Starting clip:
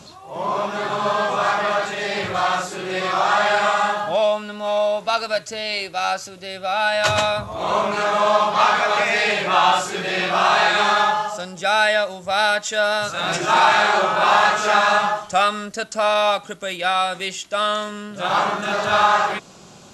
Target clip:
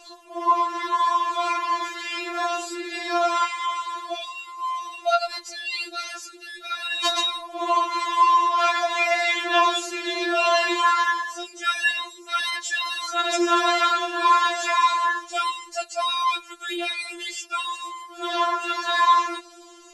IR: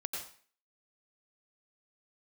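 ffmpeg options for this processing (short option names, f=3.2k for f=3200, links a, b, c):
-filter_complex "[0:a]asettb=1/sr,asplit=3[a][b][c];[a]atrim=end=3.444[d];[b]atrim=start=3.44:end=5.3,asetpts=PTS-STARTPTS,afade=t=in:d=0.004:c=qsin,afade=t=out:st=1.856:d=0.004:c=qsin,acrossover=split=260|1300[e][f][g];[e]acompressor=threshold=-50dB:ratio=4[h];[f]acompressor=threshold=-25dB:ratio=4[i];[g]acompressor=threshold=-27dB:ratio=4[j];[h][i][j]amix=inputs=3:normalize=0[k];[c]atrim=start=5.296[l];[d][k]acrossfade=d=0.004:c1=hsin:c2=qsin[m];[m][l]acrossfade=d=0.004:c1=qsin:c2=hsin,afftfilt=real='re*4*eq(mod(b,16),0)':imag='im*4*eq(mod(b,16),0)':win_size=2048:overlap=0.75"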